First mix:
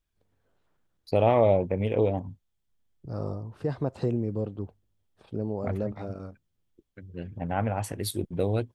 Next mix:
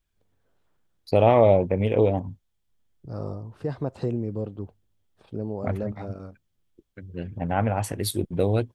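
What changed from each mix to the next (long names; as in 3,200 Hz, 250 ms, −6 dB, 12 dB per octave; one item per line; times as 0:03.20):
first voice +4.0 dB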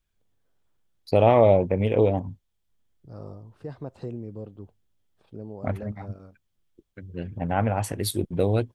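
second voice −7.5 dB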